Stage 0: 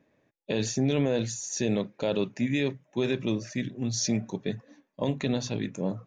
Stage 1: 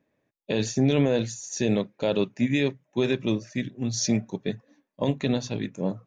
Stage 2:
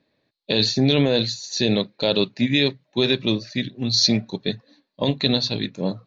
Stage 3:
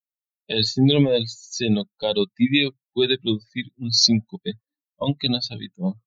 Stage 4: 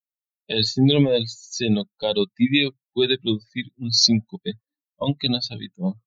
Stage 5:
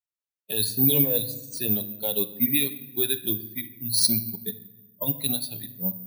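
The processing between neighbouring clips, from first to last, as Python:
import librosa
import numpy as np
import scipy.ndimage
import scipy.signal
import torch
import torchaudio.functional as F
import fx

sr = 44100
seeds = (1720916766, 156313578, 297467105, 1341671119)

y1 = fx.upward_expand(x, sr, threshold_db=-43.0, expansion=1.5)
y1 = y1 * librosa.db_to_amplitude(4.5)
y2 = fx.lowpass_res(y1, sr, hz=4200.0, q=11.0)
y2 = y2 * librosa.db_to_amplitude(3.0)
y3 = fx.bin_expand(y2, sr, power=2.0)
y3 = fx.notch_cascade(y3, sr, direction='rising', hz=0.79)
y3 = y3 * librosa.db_to_amplitude(4.5)
y4 = y3
y5 = fx.room_shoebox(y4, sr, seeds[0], volume_m3=540.0, walls='mixed', distance_m=0.39)
y5 = (np.kron(y5[::3], np.eye(3)[0]) * 3)[:len(y5)]
y5 = y5 * librosa.db_to_amplitude(-9.0)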